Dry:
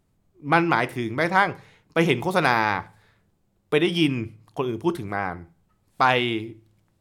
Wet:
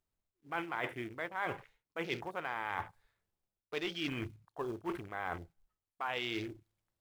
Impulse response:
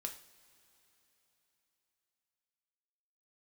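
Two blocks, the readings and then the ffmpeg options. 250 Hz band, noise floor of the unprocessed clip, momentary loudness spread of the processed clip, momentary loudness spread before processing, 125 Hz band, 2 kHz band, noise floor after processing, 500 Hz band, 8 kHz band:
-17.5 dB, -68 dBFS, 9 LU, 12 LU, -19.0 dB, -15.0 dB, under -85 dBFS, -16.5 dB, -15.0 dB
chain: -af "acrusher=bits=3:mode=log:mix=0:aa=0.000001,equalizer=f=170:w=0.63:g=-11,areverse,acompressor=threshold=-35dB:ratio=6,areverse,afwtdn=0.00501"

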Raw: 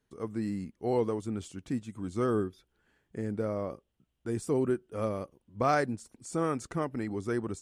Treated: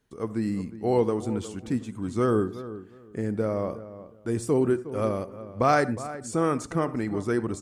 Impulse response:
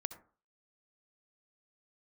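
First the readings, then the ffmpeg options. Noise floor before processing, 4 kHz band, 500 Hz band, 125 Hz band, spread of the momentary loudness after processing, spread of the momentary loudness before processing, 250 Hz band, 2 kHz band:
-79 dBFS, +5.5 dB, +5.5 dB, +5.5 dB, 13 LU, 10 LU, +5.5 dB, +5.5 dB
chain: -filter_complex "[0:a]asplit=2[a][b];[b]adelay=361,lowpass=f=1.8k:p=1,volume=-14dB,asplit=2[c][d];[d]adelay=361,lowpass=f=1.8k:p=1,volume=0.22[e];[a][c][e]amix=inputs=3:normalize=0,asplit=2[f][g];[1:a]atrim=start_sample=2205,afade=t=out:st=0.24:d=0.01,atrim=end_sample=11025[h];[g][h]afir=irnorm=-1:irlink=0,volume=0dB[i];[f][i]amix=inputs=2:normalize=0"

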